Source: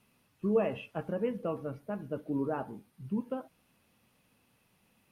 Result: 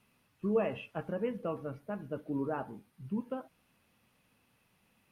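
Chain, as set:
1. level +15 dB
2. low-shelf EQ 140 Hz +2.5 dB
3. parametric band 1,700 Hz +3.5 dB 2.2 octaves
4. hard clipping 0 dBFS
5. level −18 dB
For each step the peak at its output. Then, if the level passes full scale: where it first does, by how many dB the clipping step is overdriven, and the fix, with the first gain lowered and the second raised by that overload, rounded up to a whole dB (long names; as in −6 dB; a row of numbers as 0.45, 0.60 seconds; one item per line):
−2.5, −2.5, −1.5, −1.5, −19.5 dBFS
no step passes full scale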